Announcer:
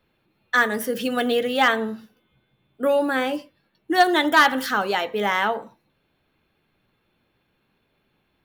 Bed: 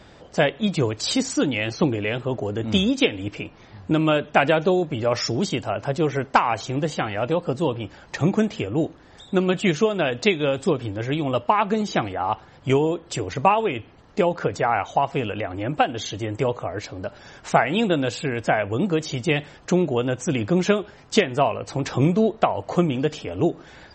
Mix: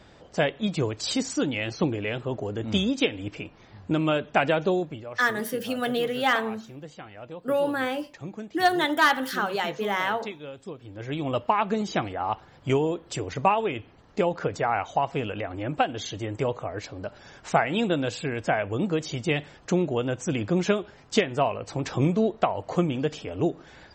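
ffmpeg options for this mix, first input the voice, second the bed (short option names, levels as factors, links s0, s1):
-filter_complex "[0:a]adelay=4650,volume=0.596[s0];[1:a]volume=2.82,afade=t=out:st=4.77:d=0.28:silence=0.223872,afade=t=in:st=10.82:d=0.47:silence=0.211349[s1];[s0][s1]amix=inputs=2:normalize=0"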